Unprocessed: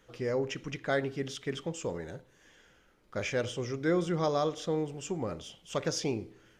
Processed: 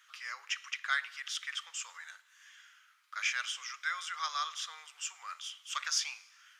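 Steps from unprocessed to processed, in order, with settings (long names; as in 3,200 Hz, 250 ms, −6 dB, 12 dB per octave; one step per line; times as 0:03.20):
elliptic high-pass filter 1,200 Hz, stop band 80 dB
dense smooth reverb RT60 1.4 s, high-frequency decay 0.95×, DRR 20 dB
level +5 dB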